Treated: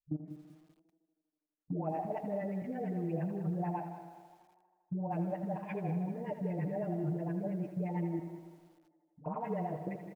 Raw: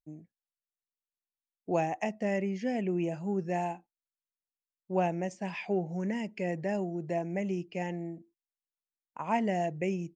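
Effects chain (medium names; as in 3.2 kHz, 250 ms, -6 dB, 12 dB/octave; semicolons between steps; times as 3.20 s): fade out at the end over 1.20 s; phase dispersion highs, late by 96 ms, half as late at 400 Hz; level held to a coarse grid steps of 22 dB; dynamic bell 160 Hz, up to +6 dB, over -59 dBFS, Q 0.99; compression 3:1, threshold -46 dBFS, peak gain reduction 7 dB; LFO low-pass sine 8.8 Hz 460–1600 Hz; comb 6.6 ms, depth 86%; on a send: tape echo 81 ms, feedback 78%, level -10 dB, low-pass 5.4 kHz; on the sum: bit-crushed delay 193 ms, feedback 35%, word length 11-bit, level -12.5 dB; trim +7 dB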